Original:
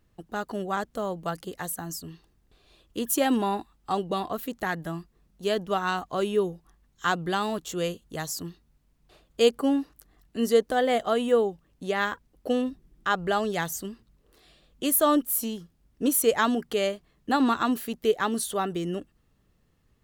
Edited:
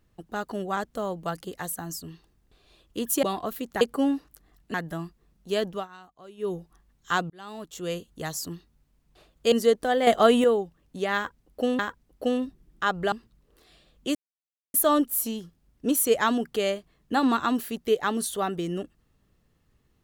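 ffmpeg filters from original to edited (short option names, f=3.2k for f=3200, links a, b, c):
-filter_complex "[0:a]asplit=13[a][b][c][d][e][f][g][h][i][j][k][l][m];[a]atrim=end=3.232[n];[b]atrim=start=4.098:end=4.682[o];[c]atrim=start=9.458:end=10.392[p];[d]atrim=start=4.678:end=5.82,asetpts=PTS-STARTPTS,afade=t=out:st=0.962:d=0.18:silence=0.1[q];[e]atrim=start=5.82:end=6.31,asetpts=PTS-STARTPTS,volume=-20dB[r];[f]atrim=start=6.31:end=7.24,asetpts=PTS-STARTPTS,afade=t=in:d=0.18:silence=0.1,afade=t=out:st=0.926:d=0.004:c=hsin[s];[g]atrim=start=7.24:end=9.462,asetpts=PTS-STARTPTS,afade=t=in:d=0.8[t];[h]atrim=start=10.388:end=10.942[u];[i]atrim=start=10.938:end=11.312,asetpts=PTS-STARTPTS,volume=7dB[v];[j]atrim=start=11.308:end=12.662[w];[k]atrim=start=12.028:end=13.362[x];[l]atrim=start=13.878:end=14.91,asetpts=PTS-STARTPTS,afade=t=out:st=1.028:d=0.004:c=hsin,apad=pad_dur=0.59[y];[m]atrim=start=14.91,asetpts=PTS-STARTPTS,afade=t=in:d=0.004:c=hsin[z];[n][o]acrossfade=d=0.004:c1=hsin:c2=hsin[aa];[aa][p]acrossfade=d=0.004:c1=hsin:c2=hsin[ab];[q][r][s][t]concat=n=4:v=0:a=1[ac];[ab][ac]acrossfade=d=0.004:c1=hsin:c2=hsin[ad];[ad][u]acrossfade=d=0.004:c1=hsin:c2=hsin[ae];[ae][v]acrossfade=d=0.004:c1=hsin:c2=hsin[af];[af][w]acrossfade=d=0.004:c1=hsin:c2=hsin[ag];[ag][x]acrossfade=d=0.004:c1=hsin:c2=hsin[ah];[y][z]concat=n=2:v=0:a=1[ai];[ah][ai]acrossfade=d=0.004:c1=hsin:c2=hsin"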